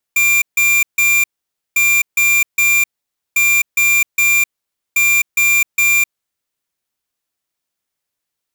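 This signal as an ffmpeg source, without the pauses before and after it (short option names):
-f lavfi -i "aevalsrc='0.237*(2*lt(mod(2380*t,1),0.5)-1)*clip(min(mod(mod(t,1.6),0.41),0.26-mod(mod(t,1.6),0.41))/0.005,0,1)*lt(mod(t,1.6),1.23)':d=6.4:s=44100"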